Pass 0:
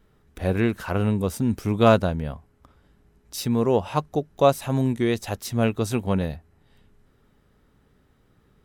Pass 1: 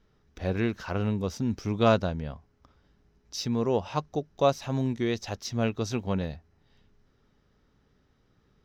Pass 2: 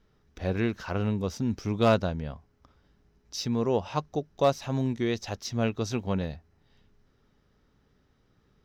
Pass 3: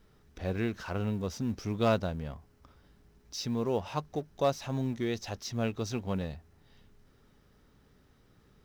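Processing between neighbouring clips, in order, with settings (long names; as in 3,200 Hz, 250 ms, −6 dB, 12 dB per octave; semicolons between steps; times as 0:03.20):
high shelf with overshoot 7,300 Hz −9.5 dB, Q 3; level −5.5 dB
hard clipping −13.5 dBFS, distortion −26 dB
mu-law and A-law mismatch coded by mu; level −5 dB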